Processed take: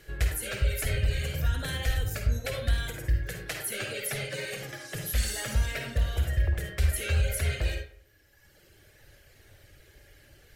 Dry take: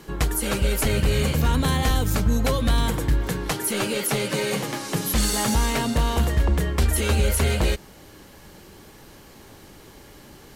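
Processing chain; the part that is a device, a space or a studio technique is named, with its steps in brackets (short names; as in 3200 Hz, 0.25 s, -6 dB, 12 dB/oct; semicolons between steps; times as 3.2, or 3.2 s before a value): reverb removal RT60 1.8 s; EQ curve 110 Hz 0 dB, 190 Hz -18 dB, 600 Hz -4 dB, 1000 Hz -20 dB, 1600 Hz 0 dB, 3200 Hz -4 dB, 6000 Hz -6 dB, 14000 Hz -4 dB; bathroom (reverb RT60 0.55 s, pre-delay 46 ms, DRR 2.5 dB); gain -3 dB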